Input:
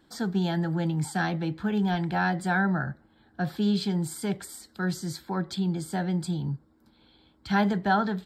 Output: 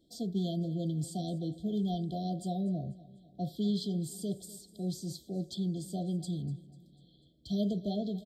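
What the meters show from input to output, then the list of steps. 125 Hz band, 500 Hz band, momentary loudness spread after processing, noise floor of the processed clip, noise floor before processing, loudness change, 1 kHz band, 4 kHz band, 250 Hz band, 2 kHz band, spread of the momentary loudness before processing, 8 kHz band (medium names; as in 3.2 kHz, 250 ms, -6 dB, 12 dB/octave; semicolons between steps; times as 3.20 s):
-6.0 dB, -6.0 dB, 8 LU, -63 dBFS, -63 dBFS, -7.0 dB, -15.0 dB, -6.5 dB, -6.0 dB, under -40 dB, 10 LU, -6.0 dB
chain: brick-wall FIR band-stop 740–3100 Hz; feedback delay 247 ms, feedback 48%, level -19 dB; trim -6 dB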